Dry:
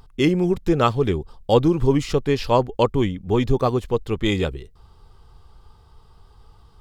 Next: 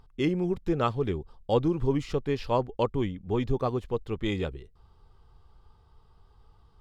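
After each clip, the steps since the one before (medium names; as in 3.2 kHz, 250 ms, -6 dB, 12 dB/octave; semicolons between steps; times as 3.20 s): treble shelf 5.3 kHz -9 dB; trim -8 dB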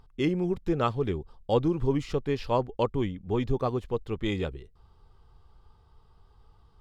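no audible change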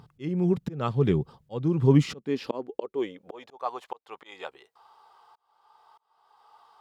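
slow attack 601 ms; high-pass sweep 140 Hz -> 830 Hz, 1.86–3.65 s; trim +7.5 dB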